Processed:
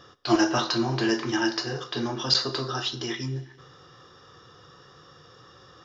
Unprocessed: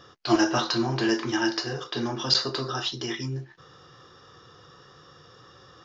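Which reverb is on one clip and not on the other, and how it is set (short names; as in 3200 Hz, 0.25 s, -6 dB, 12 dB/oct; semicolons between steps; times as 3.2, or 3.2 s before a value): Schroeder reverb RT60 1.4 s, combs from 31 ms, DRR 17 dB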